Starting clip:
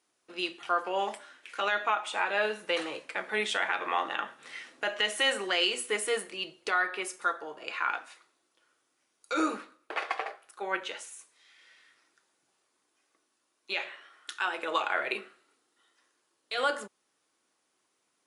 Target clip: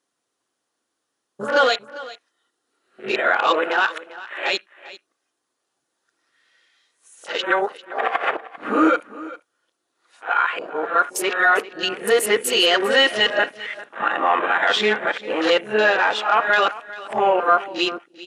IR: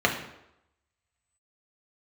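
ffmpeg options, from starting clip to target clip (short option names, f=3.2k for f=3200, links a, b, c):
-filter_complex "[0:a]areverse,asplit=2[a][b];[b]alimiter=limit=-23.5dB:level=0:latency=1:release=171,volume=2.5dB[c];[a][c]amix=inputs=2:normalize=0,aeval=exprs='0.282*(cos(1*acos(clip(val(0)/0.282,-1,1)))-cos(1*PI/2))+0.01*(cos(5*acos(clip(val(0)/0.282,-1,1)))-cos(5*PI/2))':c=same,asplit=2[d][e];[1:a]atrim=start_sample=2205,atrim=end_sample=4410[f];[e][f]afir=irnorm=-1:irlink=0,volume=-23dB[g];[d][g]amix=inputs=2:normalize=0,acontrast=25,afwtdn=0.0316,equalizer=f=69:t=o:w=2.3:g=4,aecho=1:1:397:0.133"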